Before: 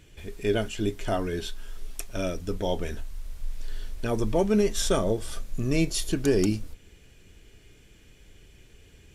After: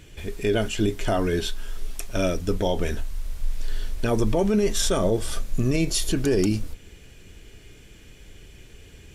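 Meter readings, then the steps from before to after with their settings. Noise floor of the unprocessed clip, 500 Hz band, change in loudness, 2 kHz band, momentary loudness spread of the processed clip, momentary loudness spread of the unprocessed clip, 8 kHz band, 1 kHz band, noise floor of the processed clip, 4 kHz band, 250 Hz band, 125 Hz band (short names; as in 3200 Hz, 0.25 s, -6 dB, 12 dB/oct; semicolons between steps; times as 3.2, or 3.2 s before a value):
-55 dBFS, +2.5 dB, +2.5 dB, +3.5 dB, 14 LU, 18 LU, +4.5 dB, +3.0 dB, -48 dBFS, +4.5 dB, +3.0 dB, +4.0 dB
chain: limiter -19.5 dBFS, peak gain reduction 8.5 dB; gain +6.5 dB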